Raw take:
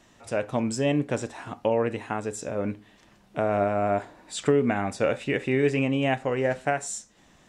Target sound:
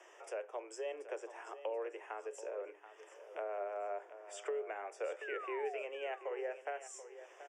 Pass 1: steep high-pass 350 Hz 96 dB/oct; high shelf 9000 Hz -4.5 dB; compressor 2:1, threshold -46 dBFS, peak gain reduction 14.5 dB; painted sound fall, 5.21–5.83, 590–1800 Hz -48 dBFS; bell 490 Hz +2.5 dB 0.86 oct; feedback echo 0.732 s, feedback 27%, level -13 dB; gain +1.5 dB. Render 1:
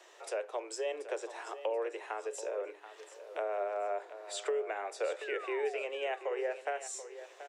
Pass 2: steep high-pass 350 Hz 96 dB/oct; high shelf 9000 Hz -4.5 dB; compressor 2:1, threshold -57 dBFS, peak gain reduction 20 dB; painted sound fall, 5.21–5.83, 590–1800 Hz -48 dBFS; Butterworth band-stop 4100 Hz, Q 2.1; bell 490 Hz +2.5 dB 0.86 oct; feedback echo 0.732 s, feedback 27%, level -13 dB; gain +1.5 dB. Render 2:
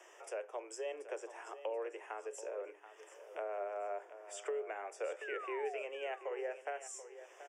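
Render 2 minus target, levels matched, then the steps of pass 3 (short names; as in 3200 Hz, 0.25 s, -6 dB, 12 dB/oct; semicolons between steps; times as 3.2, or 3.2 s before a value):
8000 Hz band +3.5 dB
steep high-pass 350 Hz 96 dB/oct; high shelf 9000 Hz -15.5 dB; compressor 2:1, threshold -57 dBFS, peak gain reduction 20 dB; painted sound fall, 5.21–5.83, 590–1800 Hz -48 dBFS; Butterworth band-stop 4100 Hz, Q 2.1; bell 490 Hz +2.5 dB 0.86 oct; feedback echo 0.732 s, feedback 27%, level -13 dB; gain +1.5 dB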